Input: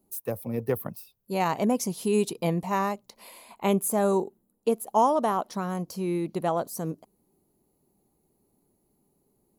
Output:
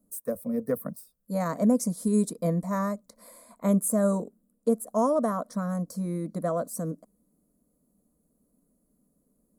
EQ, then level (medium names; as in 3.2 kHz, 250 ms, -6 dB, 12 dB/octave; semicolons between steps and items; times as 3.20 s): tilt shelf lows +4.5 dB, about 870 Hz; peaking EQ 8.5 kHz +10 dB 0.51 oct; static phaser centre 560 Hz, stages 8; 0.0 dB